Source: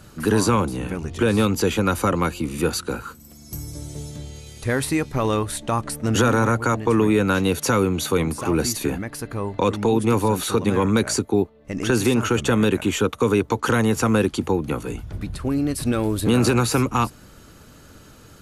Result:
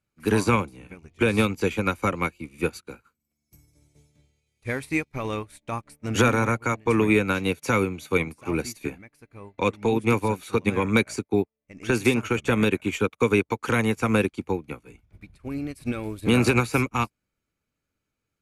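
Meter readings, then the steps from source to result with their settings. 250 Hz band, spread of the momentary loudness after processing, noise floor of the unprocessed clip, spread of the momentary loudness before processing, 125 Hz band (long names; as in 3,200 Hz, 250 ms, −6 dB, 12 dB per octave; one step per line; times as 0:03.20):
−4.5 dB, 13 LU, −47 dBFS, 12 LU, −5.0 dB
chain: parametric band 2,300 Hz +13 dB 0.28 octaves
expander for the loud parts 2.5 to 1, over −39 dBFS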